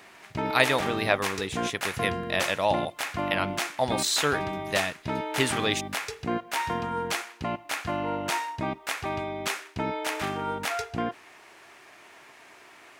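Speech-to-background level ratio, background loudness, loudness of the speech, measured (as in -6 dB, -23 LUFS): 3.0 dB, -31.0 LUFS, -28.0 LUFS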